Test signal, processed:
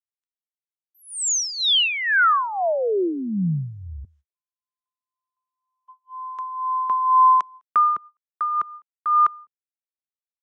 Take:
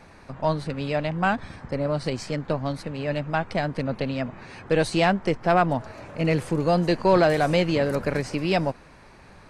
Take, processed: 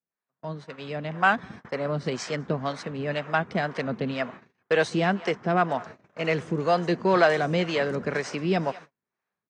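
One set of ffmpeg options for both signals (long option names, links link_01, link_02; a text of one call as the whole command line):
ffmpeg -i in.wav -filter_complex "[0:a]asplit=2[link_01][link_02];[link_02]adelay=204.1,volume=-23dB,highshelf=frequency=4000:gain=-4.59[link_03];[link_01][link_03]amix=inputs=2:normalize=0,dynaudnorm=framelen=670:gausssize=3:maxgain=14dB,acrossover=split=420[link_04][link_05];[link_04]aeval=exprs='val(0)*(1-0.7/2+0.7/2*cos(2*PI*2*n/s))':channel_layout=same[link_06];[link_05]aeval=exprs='val(0)*(1-0.7/2-0.7/2*cos(2*PI*2*n/s))':channel_layout=same[link_07];[link_06][link_07]amix=inputs=2:normalize=0,agate=range=-37dB:threshold=-33dB:ratio=16:detection=peak,highpass=210,equalizer=frequency=300:width_type=q:width=4:gain=-7,equalizer=frequency=560:width_type=q:width=4:gain=-6,equalizer=frequency=860:width_type=q:width=4:gain=-5,equalizer=frequency=2500:width_type=q:width=4:gain=-4,equalizer=frequency=4500:width_type=q:width=4:gain=-8,lowpass=frequency=6700:width=0.5412,lowpass=frequency=6700:width=1.3066,volume=-2.5dB" out.wav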